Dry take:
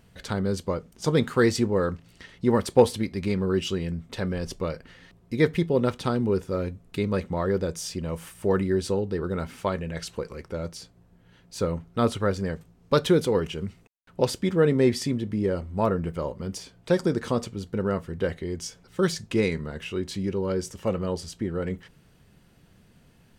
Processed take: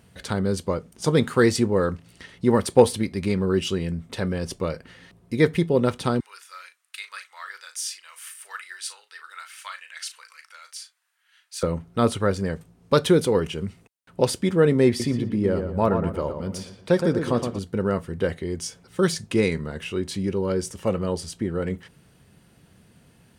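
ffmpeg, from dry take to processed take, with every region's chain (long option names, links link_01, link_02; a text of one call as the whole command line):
ffmpeg -i in.wav -filter_complex "[0:a]asettb=1/sr,asplit=3[link_01][link_02][link_03];[link_01]atrim=end=6.204[link_04];[link_02]atrim=start=6.2:end=11.63,asetpts=PTS-STARTPTS,afade=type=in:duration=0.004:curve=qsin,afade=type=out:start_time=5.426:duration=0.004:curve=qsin,highpass=frequency=1400:width=0.5412,highpass=frequency=1400:width=1.3066,asplit=2[link_05][link_06];[link_06]adelay=38,volume=-10dB[link_07];[link_05][link_07]amix=inputs=2:normalize=0,atrim=end_sample=239463[link_08];[link_03]atrim=start=11.626[link_09];[link_04][link_08]acrossfade=duration=0.004:curve1=hsin:curve2=qsin[link_10];[link_10][link_09]acrossfade=duration=0.004:curve1=qsin:curve2=hsin,asettb=1/sr,asplit=3[link_11][link_12][link_13];[link_11]atrim=end=14.884[link_14];[link_12]atrim=start=14.88:end=17.59,asetpts=PTS-STARTPTS,afade=type=in:duration=0.004:curve=qsin,afade=type=out:start_time=2.706:duration=0.004:curve=qsin,equalizer=frequency=8500:width=0.71:gain=-5,asplit=2[link_15][link_16];[link_16]adelay=117,lowpass=frequency=2300:poles=1,volume=-6.5dB,asplit=2[link_17][link_18];[link_18]adelay=117,lowpass=frequency=2300:poles=1,volume=0.39,asplit=2[link_19][link_20];[link_20]adelay=117,lowpass=frequency=2300:poles=1,volume=0.39,asplit=2[link_21][link_22];[link_22]adelay=117,lowpass=frequency=2300:poles=1,volume=0.39,asplit=2[link_23][link_24];[link_24]adelay=117,lowpass=frequency=2300:poles=1,volume=0.39[link_25];[link_15][link_17][link_19][link_21][link_23][link_25]amix=inputs=6:normalize=0,atrim=end_sample=119511[link_26];[link_13]atrim=start=17.586[link_27];[link_14][link_26]acrossfade=duration=0.004:curve1=hsin:curve2=qsin[link_28];[link_28][link_27]acrossfade=duration=0.004:curve1=qsin:curve2=hsin,highpass=57,equalizer=frequency=9300:width=4.9:gain=7.5,volume=2.5dB" out.wav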